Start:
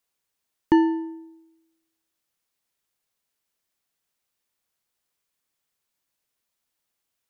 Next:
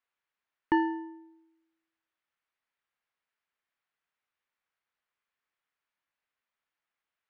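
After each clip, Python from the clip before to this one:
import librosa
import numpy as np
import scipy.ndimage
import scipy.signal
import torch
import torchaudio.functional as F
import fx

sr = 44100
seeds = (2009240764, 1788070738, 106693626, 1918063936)

y = scipy.signal.sosfilt(scipy.signal.cheby1(2, 1.0, 1700.0, 'lowpass', fs=sr, output='sos'), x)
y = fx.tilt_shelf(y, sr, db=-7.5, hz=870.0)
y = y * librosa.db_to_amplitude(-3.0)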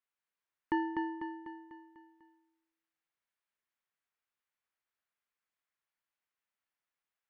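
y = fx.echo_feedback(x, sr, ms=248, feedback_pct=51, wet_db=-5)
y = y * librosa.db_to_amplitude(-6.5)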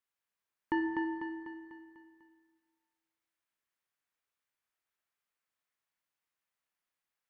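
y = fx.rev_plate(x, sr, seeds[0], rt60_s=1.5, hf_ratio=1.0, predelay_ms=0, drr_db=5.5)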